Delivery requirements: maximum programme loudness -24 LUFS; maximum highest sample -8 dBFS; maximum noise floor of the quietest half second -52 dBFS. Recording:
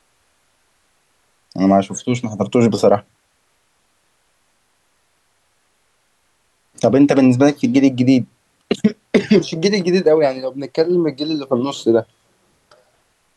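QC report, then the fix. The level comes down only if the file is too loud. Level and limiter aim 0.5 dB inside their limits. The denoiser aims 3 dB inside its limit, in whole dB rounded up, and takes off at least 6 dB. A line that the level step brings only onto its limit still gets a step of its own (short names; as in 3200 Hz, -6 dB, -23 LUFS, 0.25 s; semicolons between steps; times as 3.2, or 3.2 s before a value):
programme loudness -16.0 LUFS: fail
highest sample -2.5 dBFS: fail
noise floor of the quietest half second -63 dBFS: OK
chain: gain -8.5 dB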